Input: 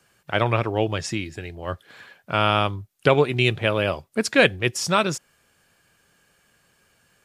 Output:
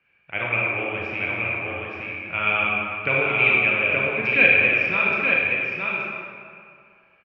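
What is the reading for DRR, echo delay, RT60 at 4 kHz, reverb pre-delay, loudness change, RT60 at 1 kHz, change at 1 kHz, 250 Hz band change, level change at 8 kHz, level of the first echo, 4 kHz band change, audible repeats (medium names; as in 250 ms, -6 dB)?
-6.0 dB, 874 ms, 1.4 s, 27 ms, +2.5 dB, 2.4 s, -3.5 dB, -6.0 dB, under -30 dB, -4.5 dB, -6.5 dB, 1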